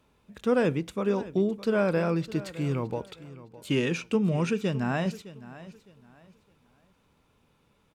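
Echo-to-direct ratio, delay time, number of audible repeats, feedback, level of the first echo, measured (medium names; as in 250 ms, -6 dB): -16.5 dB, 611 ms, 2, 28%, -17.0 dB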